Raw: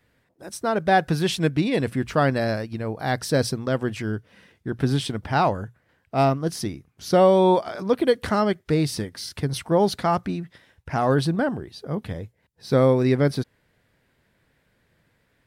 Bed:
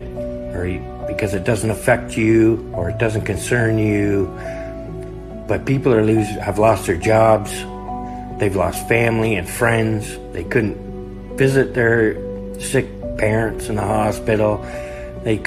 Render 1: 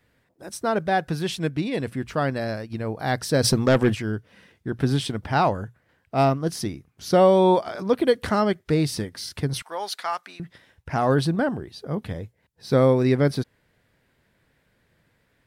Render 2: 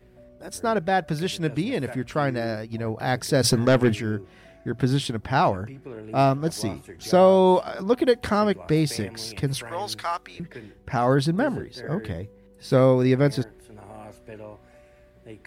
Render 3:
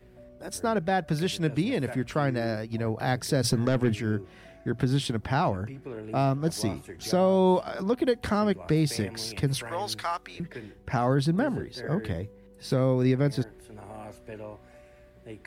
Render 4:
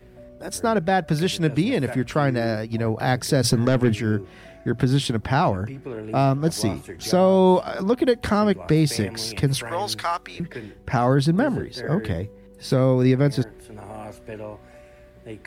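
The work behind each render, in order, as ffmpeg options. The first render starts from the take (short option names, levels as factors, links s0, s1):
-filter_complex "[0:a]asplit=3[s0][s1][s2];[s0]afade=t=out:st=3.43:d=0.02[s3];[s1]aeval=exprs='0.266*sin(PI/2*1.78*val(0)/0.266)':c=same,afade=t=in:st=3.43:d=0.02,afade=t=out:st=3.94:d=0.02[s4];[s2]afade=t=in:st=3.94:d=0.02[s5];[s3][s4][s5]amix=inputs=3:normalize=0,asettb=1/sr,asplit=3[s6][s7][s8];[s6]atrim=end=9.624[s9];[s7]atrim=start=9.62:end=10.4,asetpts=PTS-STARTPTS,afade=t=in:d=0.004:c=qsin,afade=t=out:st=0.776:d=0.004:c=qsin,highpass=1100[s10];[s8]atrim=start=10.396[s11];[s9][s10]acrossfade=d=0.004:c1=hsin:c2=qsin[s12];[s12][s11]acrossfade=d=0.004:c1=qsin:c2=hsin,asplit=3[s13][s14][s15];[s13]atrim=end=0.872[s16];[s14]atrim=start=0.868:end=2.702,asetpts=PTS-STARTPTS,volume=0.631[s17];[s15]atrim=start=2.698[s18];[s16][s17]acrossfade=d=0.004:c1=hsin:c2=hsin[s19];[s19][s18]acrossfade=d=0.004:c1=hsin:c2=hsin"
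-filter_complex "[1:a]volume=0.0596[s0];[0:a][s0]amix=inputs=2:normalize=0"
-filter_complex "[0:a]acrossover=split=270[s0][s1];[s1]acompressor=threshold=0.0316:ratio=1.5[s2];[s0][s2]amix=inputs=2:normalize=0,alimiter=limit=0.211:level=0:latency=1:release=282"
-af "volume=1.88"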